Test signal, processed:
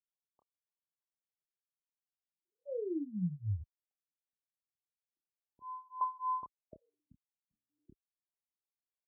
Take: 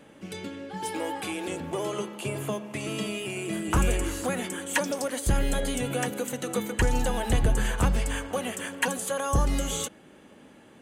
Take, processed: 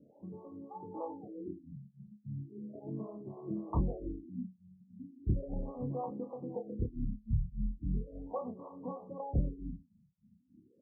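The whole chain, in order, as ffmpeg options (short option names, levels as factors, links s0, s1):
-filter_complex "[0:a]highpass=46,acrossover=split=420[s0][s1];[s0]aeval=exprs='val(0)*(1-1/2+1/2*cos(2*PI*3.4*n/s))':c=same[s2];[s1]aeval=exprs='val(0)*(1-1/2-1/2*cos(2*PI*3.4*n/s))':c=same[s3];[s2][s3]amix=inputs=2:normalize=0,asuperstop=centerf=1600:order=20:qfactor=1.7,asplit=2[s4][s5];[s5]adelay=28,volume=0.501[s6];[s4][s6]amix=inputs=2:normalize=0,afftfilt=real='re*lt(b*sr/1024,210*pow(1800/210,0.5+0.5*sin(2*PI*0.37*pts/sr)))':imag='im*lt(b*sr/1024,210*pow(1800/210,0.5+0.5*sin(2*PI*0.37*pts/sr)))':win_size=1024:overlap=0.75,volume=0.596"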